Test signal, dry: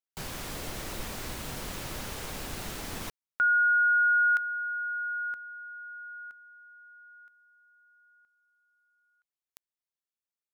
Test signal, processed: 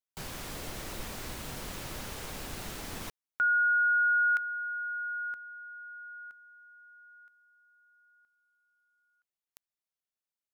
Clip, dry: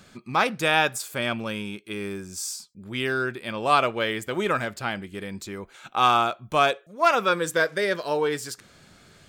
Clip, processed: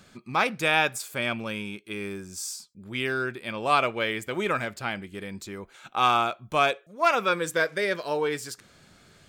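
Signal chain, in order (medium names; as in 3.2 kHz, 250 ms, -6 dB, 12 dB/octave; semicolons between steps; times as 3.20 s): dynamic bell 2.3 kHz, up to +5 dB, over -44 dBFS, Q 5.1; trim -2.5 dB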